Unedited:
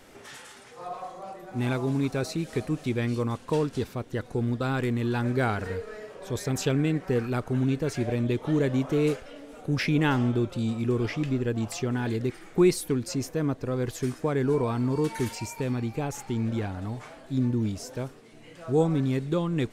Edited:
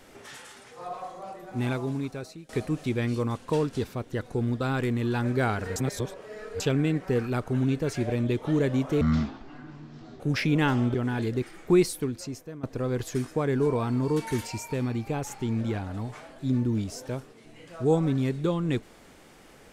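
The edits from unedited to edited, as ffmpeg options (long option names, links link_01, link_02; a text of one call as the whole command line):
ffmpeg -i in.wav -filter_complex "[0:a]asplit=8[link_01][link_02][link_03][link_04][link_05][link_06][link_07][link_08];[link_01]atrim=end=2.49,asetpts=PTS-STARTPTS,afade=type=out:start_time=1.58:duration=0.91:silence=0.0891251[link_09];[link_02]atrim=start=2.49:end=5.762,asetpts=PTS-STARTPTS,afade=type=in:duration=0.004:curve=hsin:silence=0.0891251[link_10];[link_03]atrim=start=5.758:end=6.602,asetpts=PTS-STARTPTS,areverse[link_11];[link_04]atrim=start=6.598:end=9.014[link_12];[link_05]atrim=start=9.01:end=9.63,asetpts=PTS-STARTPTS,asetrate=22932,aresample=44100[link_13];[link_06]atrim=start=9.626:end=10.372[link_14];[link_07]atrim=start=11.818:end=13.51,asetpts=PTS-STARTPTS,afade=type=out:start_time=0.852:duration=0.84:silence=0.11885[link_15];[link_08]atrim=start=13.51,asetpts=PTS-STARTPTS,afade=type=in:duration=0.004:curve=hsin:silence=0.11885[link_16];[link_09][link_10]concat=n=2:v=0:a=1[link_17];[link_17][link_11]acrossfade=duration=0.004:curve1=hsin:curve2=hsin[link_18];[link_18][link_12]acrossfade=duration=0.004:curve1=hsin:curve2=hsin[link_19];[link_19][link_13]acrossfade=duration=0.004:curve1=hsin:curve2=hsin[link_20];[link_20][link_14]acrossfade=duration=0.004:curve1=hsin:curve2=hsin[link_21];[link_15][link_16]concat=n=2:v=0:a=1[link_22];[link_21][link_22]acrossfade=duration=0.004:curve1=hsin:curve2=hsin" out.wav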